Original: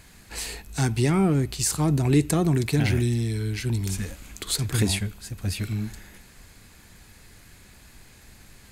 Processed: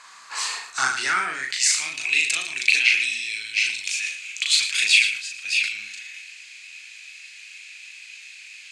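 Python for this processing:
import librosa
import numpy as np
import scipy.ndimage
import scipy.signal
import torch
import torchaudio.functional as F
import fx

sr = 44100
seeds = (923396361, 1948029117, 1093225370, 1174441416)

y = scipy.signal.sosfilt(scipy.signal.butter(4, 7200.0, 'lowpass', fs=sr, output='sos'), x)
y = fx.low_shelf(y, sr, hz=360.0, db=9.0)
y = y + 10.0 ** (-13.0 / 20.0) * np.pad(y, (int(113 * sr / 1000.0), 0))[:len(y)]
y = fx.filter_sweep_highpass(y, sr, from_hz=1100.0, to_hz=2500.0, start_s=0.62, end_s=1.94, q=7.6)
y = fx.high_shelf(y, sr, hz=4300.0, db=10.0)
y = fx.doubler(y, sr, ms=38.0, db=-3.0)
y = fx.sustainer(y, sr, db_per_s=88.0)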